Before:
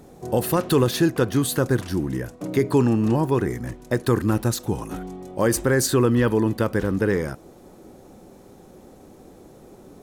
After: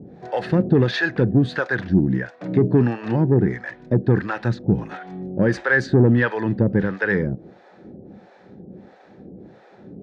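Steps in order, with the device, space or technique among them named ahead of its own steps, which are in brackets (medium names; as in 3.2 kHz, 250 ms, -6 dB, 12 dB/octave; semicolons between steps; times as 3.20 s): guitar amplifier with harmonic tremolo (harmonic tremolo 1.5 Hz, depth 100%, crossover 560 Hz; saturation -16 dBFS, distortion -17 dB; cabinet simulation 79–3900 Hz, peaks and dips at 120 Hz +4 dB, 190 Hz +8 dB, 1.1 kHz -7 dB, 1.7 kHz +8 dB, 3 kHz -5 dB); trim +6.5 dB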